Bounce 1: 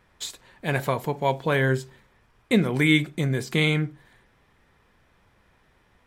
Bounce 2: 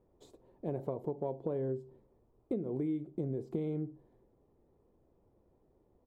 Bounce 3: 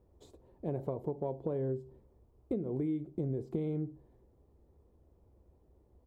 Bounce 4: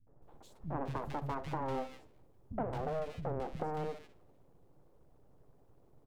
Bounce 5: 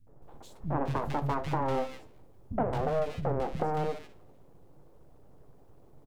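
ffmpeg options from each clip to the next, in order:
ffmpeg -i in.wav -af "firequalizer=gain_entry='entry(190,0);entry(340,9);entry(1600,-24)':delay=0.05:min_phase=1,acompressor=threshold=-24dB:ratio=8,volume=-8dB" out.wav
ffmpeg -i in.wav -af "equalizer=frequency=66:width_type=o:width=0.94:gain=14.5" out.wav
ffmpeg -i in.wav -filter_complex "[0:a]aeval=exprs='abs(val(0))':channel_layout=same,acrossover=split=200|1900[link_01][link_02][link_03];[link_02]adelay=70[link_04];[link_03]adelay=220[link_05];[link_01][link_04][link_05]amix=inputs=3:normalize=0,afftfilt=real='re*lt(hypot(re,im),0.158)':imag='im*lt(hypot(re,im),0.158)':win_size=1024:overlap=0.75,volume=3.5dB" out.wav
ffmpeg -i in.wav -filter_complex "[0:a]asplit=2[link_01][link_02];[link_02]adelay=21,volume=-12.5dB[link_03];[link_01][link_03]amix=inputs=2:normalize=0,volume=7dB" out.wav

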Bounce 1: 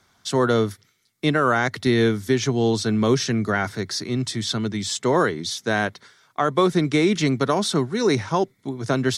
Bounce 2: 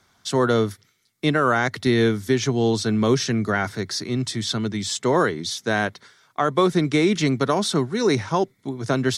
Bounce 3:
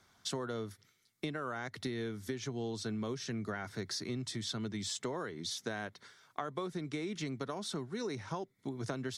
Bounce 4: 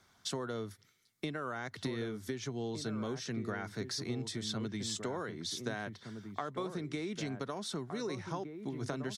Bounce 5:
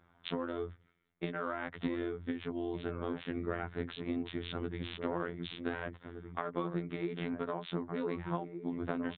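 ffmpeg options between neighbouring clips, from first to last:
ffmpeg -i in.wav -af anull out.wav
ffmpeg -i in.wav -af "acompressor=threshold=-29dB:ratio=12,volume=-6dB" out.wav
ffmpeg -i in.wav -filter_complex "[0:a]asplit=2[link_01][link_02];[link_02]adelay=1516,volume=-7dB,highshelf=frequency=4000:gain=-34.1[link_03];[link_01][link_03]amix=inputs=2:normalize=0" out.wav
ffmpeg -i in.wav -af "afftfilt=real='hypot(re,im)*cos(PI*b)':imag='0':win_size=2048:overlap=0.75,adynamicsmooth=sensitivity=6:basefreq=1900,aresample=8000,aresample=44100,volume=6dB" out.wav

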